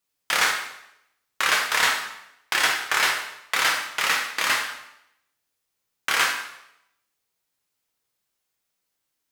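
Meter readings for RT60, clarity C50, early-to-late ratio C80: 0.80 s, 5.5 dB, 8.5 dB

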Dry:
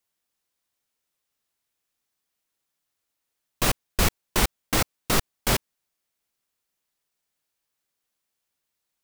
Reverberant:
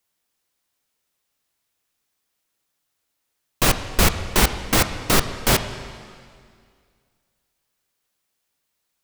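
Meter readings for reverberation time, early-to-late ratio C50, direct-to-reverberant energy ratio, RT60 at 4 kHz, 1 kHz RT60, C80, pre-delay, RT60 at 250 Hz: 2.1 s, 10.5 dB, 9.0 dB, 2.0 s, 2.1 s, 11.5 dB, 6 ms, 2.2 s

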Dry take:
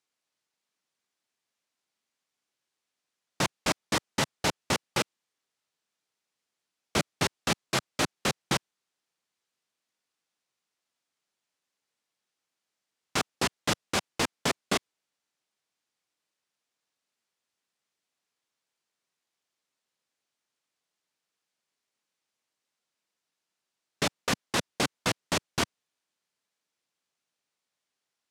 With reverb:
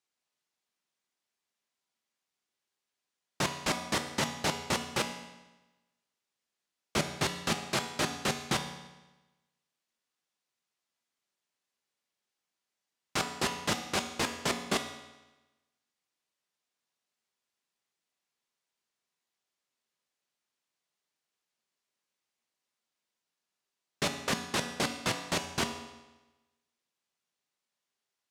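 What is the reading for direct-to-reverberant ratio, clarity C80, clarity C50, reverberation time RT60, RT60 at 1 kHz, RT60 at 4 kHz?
5.0 dB, 10.5 dB, 8.5 dB, 1.1 s, 1.1 s, 1.0 s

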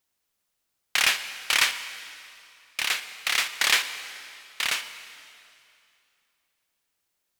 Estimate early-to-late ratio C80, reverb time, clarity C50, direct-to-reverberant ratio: 12.0 dB, 2.6 s, 11.0 dB, 10.5 dB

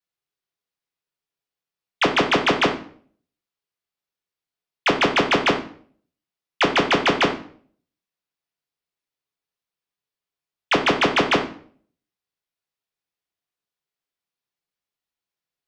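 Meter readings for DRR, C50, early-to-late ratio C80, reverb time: 3.0 dB, 9.5 dB, 14.0 dB, 0.50 s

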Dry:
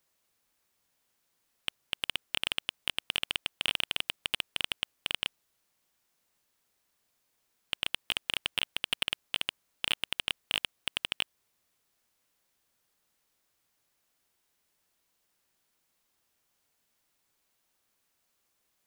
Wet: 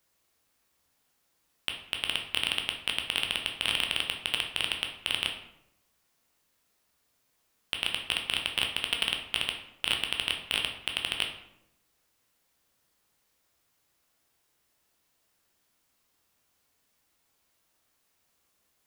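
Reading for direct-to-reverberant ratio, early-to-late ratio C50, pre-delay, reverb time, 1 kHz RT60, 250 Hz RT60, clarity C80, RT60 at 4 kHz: 2.0 dB, 7.0 dB, 10 ms, 0.85 s, 0.75 s, 1.0 s, 10.0 dB, 0.50 s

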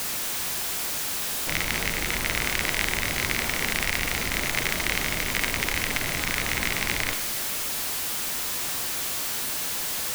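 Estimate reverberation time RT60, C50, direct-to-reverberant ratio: 1.9 s, 10.0 dB, 8.5 dB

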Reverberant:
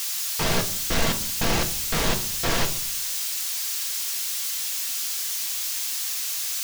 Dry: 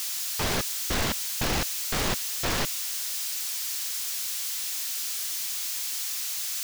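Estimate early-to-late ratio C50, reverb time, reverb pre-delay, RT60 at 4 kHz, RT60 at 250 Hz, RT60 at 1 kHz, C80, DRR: 13.5 dB, 0.55 s, 4 ms, 0.40 s, 0.70 s, 0.50 s, 17.5 dB, 4.0 dB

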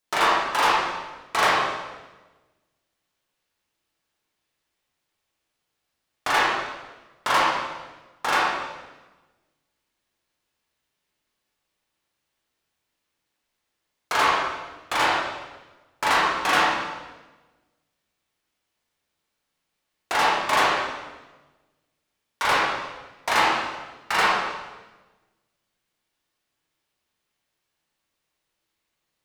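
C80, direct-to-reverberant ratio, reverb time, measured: 1.5 dB, -7.0 dB, 1.2 s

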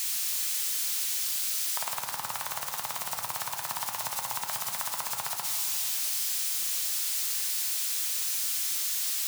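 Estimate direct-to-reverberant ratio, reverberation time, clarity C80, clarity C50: 3.5 dB, 2.6 s, 6.0 dB, 5.5 dB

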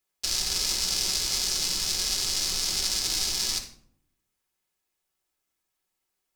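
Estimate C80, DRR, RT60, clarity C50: 13.0 dB, 2.0 dB, 0.65 s, 9.0 dB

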